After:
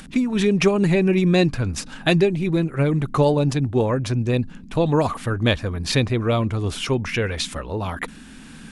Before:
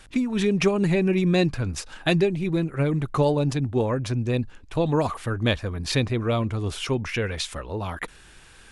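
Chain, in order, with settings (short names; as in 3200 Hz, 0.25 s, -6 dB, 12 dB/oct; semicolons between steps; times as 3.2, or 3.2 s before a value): upward compressor, threshold -44 dBFS; band noise 150–280 Hz -47 dBFS; gain +3.5 dB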